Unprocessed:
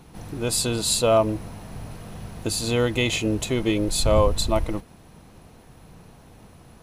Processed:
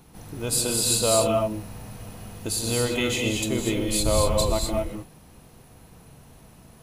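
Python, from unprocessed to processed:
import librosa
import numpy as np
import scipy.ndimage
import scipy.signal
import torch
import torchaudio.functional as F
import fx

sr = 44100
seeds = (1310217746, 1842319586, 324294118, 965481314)

y = fx.high_shelf(x, sr, hz=8600.0, db=10.0)
y = fx.rev_gated(y, sr, seeds[0], gate_ms=270, shape='rising', drr_db=1.5)
y = F.gain(torch.from_numpy(y), -4.5).numpy()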